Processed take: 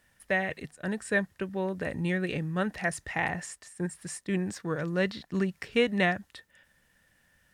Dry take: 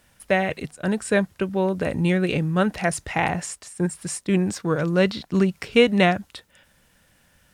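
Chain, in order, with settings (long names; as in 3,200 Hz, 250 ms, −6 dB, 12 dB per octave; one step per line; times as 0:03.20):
parametric band 1,800 Hz +10 dB 0.21 octaves
level −9 dB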